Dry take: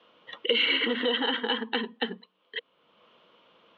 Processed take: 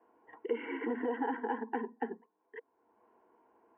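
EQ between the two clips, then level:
low-pass filter 1,300 Hz 24 dB per octave
low-shelf EQ 160 Hz −4 dB
phaser with its sweep stopped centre 830 Hz, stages 8
0.0 dB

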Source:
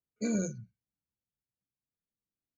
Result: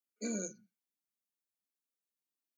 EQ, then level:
Butterworth high-pass 210 Hz 36 dB per octave
high-shelf EQ 4,700 Hz +8.5 dB
−5.5 dB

